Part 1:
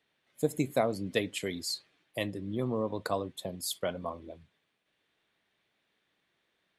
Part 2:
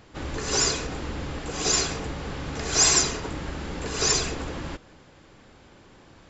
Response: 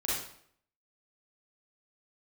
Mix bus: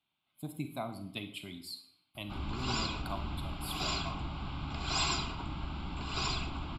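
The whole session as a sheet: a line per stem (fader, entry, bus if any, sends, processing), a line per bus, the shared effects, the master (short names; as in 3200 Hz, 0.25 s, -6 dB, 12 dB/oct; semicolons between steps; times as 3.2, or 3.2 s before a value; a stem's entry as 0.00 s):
-6.5 dB, 0.00 s, send -12.5 dB, dry
-4.0 dB, 2.15 s, no send, high shelf 8600 Hz -6 dB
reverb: on, RT60 0.65 s, pre-delay 34 ms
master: fixed phaser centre 1800 Hz, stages 6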